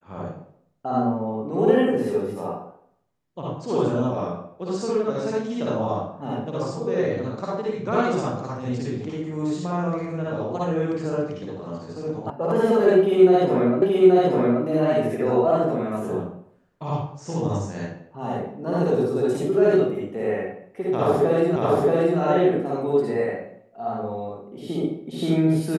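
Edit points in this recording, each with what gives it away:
0:12.30: cut off before it has died away
0:13.82: the same again, the last 0.83 s
0:21.56: the same again, the last 0.63 s

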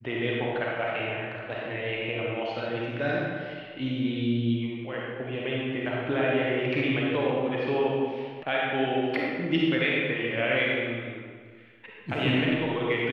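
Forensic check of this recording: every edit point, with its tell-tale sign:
0:08.43: cut off before it has died away

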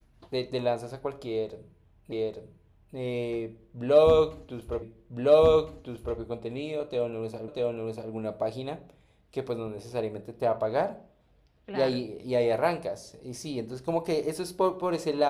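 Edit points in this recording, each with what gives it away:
0:02.12: the same again, the last 0.84 s
0:04.82: the same again, the last 1.36 s
0:07.48: the same again, the last 0.64 s

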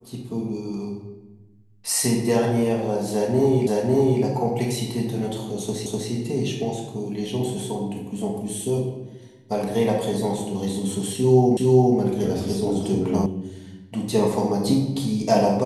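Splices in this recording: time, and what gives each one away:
0:03.67: the same again, the last 0.55 s
0:05.86: the same again, the last 0.25 s
0:11.57: the same again, the last 0.41 s
0:13.26: cut off before it has died away

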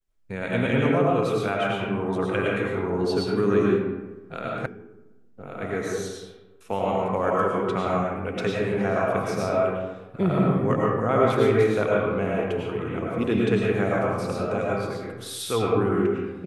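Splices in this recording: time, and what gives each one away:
0:04.66: cut off before it has died away

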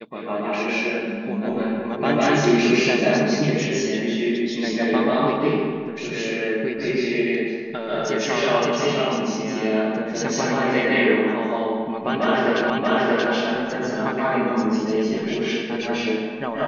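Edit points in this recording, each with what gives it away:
0:12.70: the same again, the last 0.63 s

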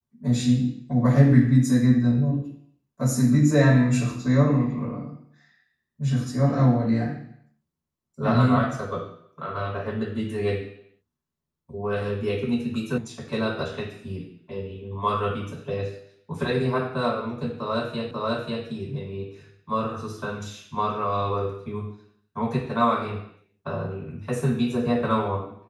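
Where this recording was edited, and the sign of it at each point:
0:12.98: cut off before it has died away
0:18.11: the same again, the last 0.54 s

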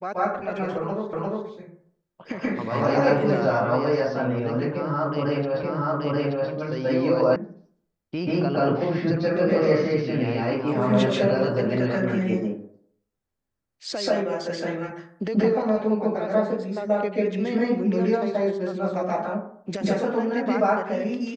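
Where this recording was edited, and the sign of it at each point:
0:01.13: the same again, the last 0.35 s
0:05.63: the same again, the last 0.88 s
0:07.36: cut off before it has died away

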